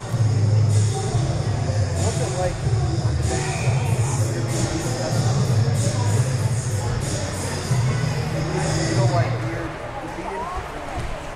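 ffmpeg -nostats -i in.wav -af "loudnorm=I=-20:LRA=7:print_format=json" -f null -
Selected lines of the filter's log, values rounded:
"input_i" : "-22.8",
"input_tp" : "-8.4",
"input_lra" : "3.0",
"input_thresh" : "-32.8",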